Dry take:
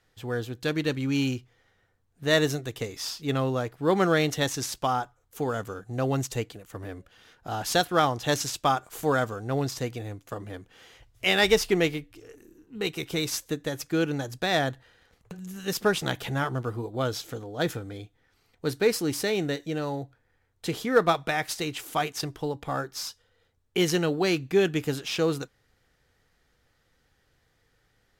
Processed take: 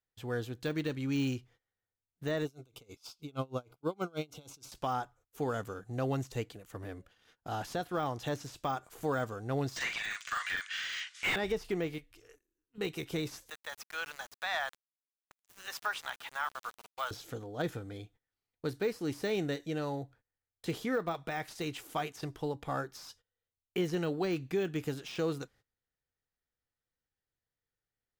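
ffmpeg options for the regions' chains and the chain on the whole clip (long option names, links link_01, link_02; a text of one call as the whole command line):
ffmpeg -i in.wav -filter_complex "[0:a]asettb=1/sr,asplit=3[link_01][link_02][link_03];[link_01]atrim=end=2.454[link_04];[link_02]atrim=start=2.45:end=4.72,asetpts=PTS-STARTPTS,afade=type=in:duration=0.004:curve=qsin,afade=type=out:start_time=2.266:duration=0.004:curve=qsin,asuperstop=centerf=1800:order=8:qfactor=3.2,aeval=exprs='val(0)*pow(10,-31*(0.5-0.5*cos(2*PI*6.3*n/s))/20)':channel_layout=same[link_05];[link_03]atrim=start=4.716[link_06];[link_04][link_05]acrossfade=duration=0.004:curve1=hsin:curve2=qsin[link_07];[link_07][link_06]acrossfade=duration=0.004:curve1=qsin:curve2=hsin,asettb=1/sr,asplit=3[link_08][link_09][link_10];[link_08]atrim=end=9.764[link_11];[link_09]atrim=start=9.76:end=11.36,asetpts=PTS-STARTPTS,afade=type=in:duration=0.004:curve=qsin,afade=type=out:start_time=1.596:duration=0.004:curve=qsin,asuperpass=centerf=3800:order=8:qfactor=0.52,asplit=2[link_12][link_13];[link_13]highpass=frequency=720:poles=1,volume=34dB,asoftclip=type=tanh:threshold=-10dB[link_14];[link_12][link_14]amix=inputs=2:normalize=0,lowpass=frequency=4900:poles=1,volume=-6dB,asplit=2[link_15][link_16];[link_16]adelay=43,volume=-5dB[link_17];[link_15][link_17]amix=inputs=2:normalize=0,atrim=end_sample=70560[link_18];[link_10]atrim=start=11.356[link_19];[link_11][link_18]acrossfade=duration=0.004:curve1=hsin:curve2=qsin[link_20];[link_20][link_19]acrossfade=duration=0.004:curve1=qsin:curve2=hsin,asettb=1/sr,asplit=3[link_21][link_22][link_23];[link_21]atrim=end=11.984[link_24];[link_22]atrim=start=11.98:end=12.78,asetpts=PTS-STARTPTS,afade=type=in:duration=0.004:curve=qsin,afade=type=out:start_time=0.796:duration=0.004:curve=qsin,equalizer=frequency=210:width_type=o:width=2:gain=-13.5,bandreject=frequency=820:width=12[link_25];[link_23]atrim=start=12.776[link_26];[link_24][link_25]acrossfade=duration=0.004:curve1=hsin:curve2=qsin[link_27];[link_27][link_26]acrossfade=duration=0.004:curve1=qsin:curve2=hsin,asettb=1/sr,asplit=3[link_28][link_29][link_30];[link_28]atrim=end=13.504[link_31];[link_29]atrim=start=13.5:end=17.11,asetpts=PTS-STARTPTS,afade=type=in:duration=0.004:curve=qsin,afade=type=out:start_time=3.606:duration=0.004:curve=qsin,highpass=frequency=930:width=0.5412,highpass=frequency=930:width=1.3066,acontrast=82,aeval=exprs='val(0)*gte(abs(val(0)),0.015)':channel_layout=same[link_32];[link_30]atrim=start=17.106[link_33];[link_31][link_32]acrossfade=duration=0.004:curve1=hsin:curve2=qsin[link_34];[link_34][link_33]acrossfade=duration=0.004:curve1=qsin:curve2=hsin,deesser=0.9,agate=range=-21dB:threshold=-54dB:ratio=16:detection=peak,alimiter=limit=-17.5dB:level=0:latency=1:release=348,volume=-5dB" out.wav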